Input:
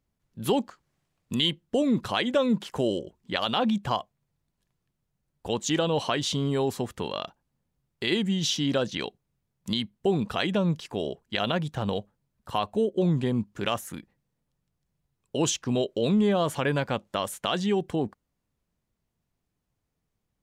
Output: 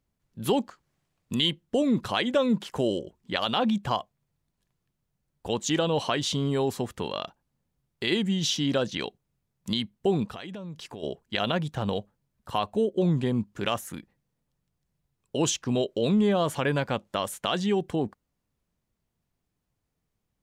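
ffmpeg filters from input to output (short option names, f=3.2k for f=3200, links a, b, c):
-filter_complex "[0:a]asplit=3[a][b][c];[a]afade=t=out:st=10.25:d=0.02[d];[b]acompressor=threshold=-36dB:ratio=6:attack=3.2:release=140:knee=1:detection=peak,afade=t=in:st=10.25:d=0.02,afade=t=out:st=11.02:d=0.02[e];[c]afade=t=in:st=11.02:d=0.02[f];[d][e][f]amix=inputs=3:normalize=0"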